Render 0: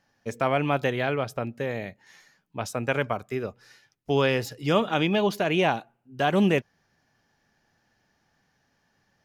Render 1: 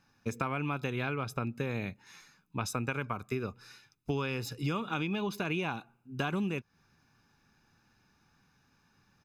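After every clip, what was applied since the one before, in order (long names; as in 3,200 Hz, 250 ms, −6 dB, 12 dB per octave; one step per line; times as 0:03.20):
comb filter 0.8 ms, depth 62%
downward compressor 16 to 1, threshold −29 dBFS, peak gain reduction 14.5 dB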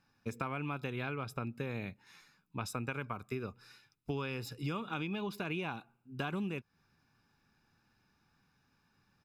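notch filter 6,300 Hz, Q 8.9
level −4.5 dB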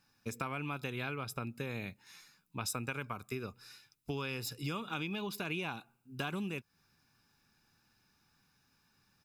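high-shelf EQ 3,800 Hz +11.5 dB
level −1.5 dB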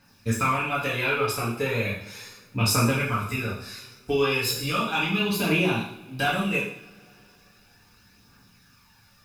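phase shifter 0.36 Hz, delay 2.7 ms, feedback 51%
coupled-rooms reverb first 0.6 s, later 3.6 s, from −28 dB, DRR −8.5 dB
level +4.5 dB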